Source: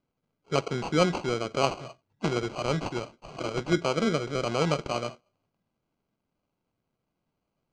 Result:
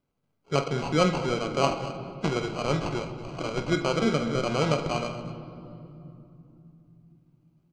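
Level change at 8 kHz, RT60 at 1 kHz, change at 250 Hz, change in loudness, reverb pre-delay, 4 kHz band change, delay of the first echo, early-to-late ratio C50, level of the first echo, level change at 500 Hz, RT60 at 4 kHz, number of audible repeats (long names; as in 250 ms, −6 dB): +0.5 dB, 2.7 s, +2.0 dB, +1.0 dB, 7 ms, +1.0 dB, 48 ms, 9.0 dB, −12.0 dB, +1.0 dB, 1.7 s, 2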